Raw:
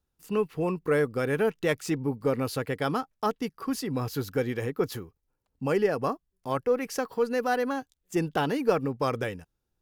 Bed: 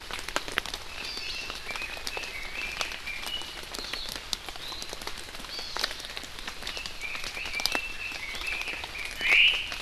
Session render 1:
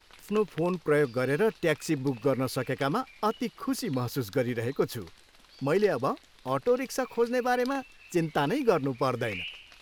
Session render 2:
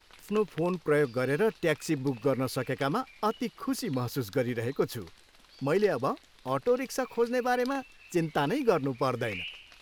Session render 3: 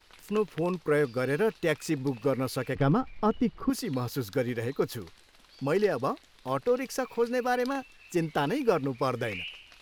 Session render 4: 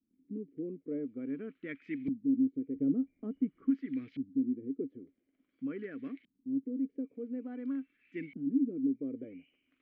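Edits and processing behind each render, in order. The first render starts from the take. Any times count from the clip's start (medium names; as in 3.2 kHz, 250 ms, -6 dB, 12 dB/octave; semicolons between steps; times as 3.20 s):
add bed -17.5 dB
trim -1 dB
2.75–3.70 s: RIAA curve playback
vowel filter i; LFO low-pass saw up 0.48 Hz 200–2400 Hz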